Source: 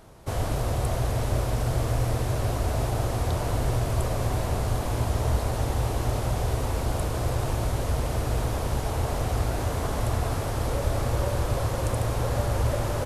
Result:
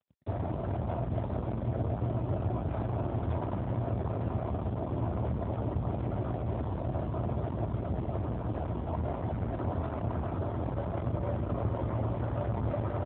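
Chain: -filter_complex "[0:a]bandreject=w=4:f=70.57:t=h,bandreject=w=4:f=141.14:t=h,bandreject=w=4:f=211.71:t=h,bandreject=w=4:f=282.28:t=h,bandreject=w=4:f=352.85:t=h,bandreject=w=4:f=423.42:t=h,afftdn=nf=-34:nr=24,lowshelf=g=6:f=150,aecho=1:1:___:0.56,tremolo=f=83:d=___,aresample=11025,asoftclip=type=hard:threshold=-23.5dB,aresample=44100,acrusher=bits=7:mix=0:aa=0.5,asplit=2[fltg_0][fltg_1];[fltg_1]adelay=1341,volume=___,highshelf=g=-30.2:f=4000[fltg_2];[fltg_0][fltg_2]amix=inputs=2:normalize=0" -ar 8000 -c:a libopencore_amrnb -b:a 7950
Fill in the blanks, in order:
3.1, 0.519, -26dB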